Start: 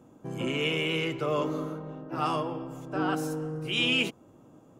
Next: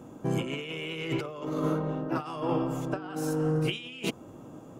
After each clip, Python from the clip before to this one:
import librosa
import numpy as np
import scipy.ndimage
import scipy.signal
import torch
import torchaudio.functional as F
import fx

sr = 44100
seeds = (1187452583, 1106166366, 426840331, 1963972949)

y = fx.over_compress(x, sr, threshold_db=-34.0, ratio=-0.5)
y = y * librosa.db_to_amplitude(4.0)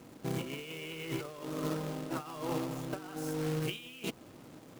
y = fx.quant_companded(x, sr, bits=4)
y = y * librosa.db_to_amplitude(-7.0)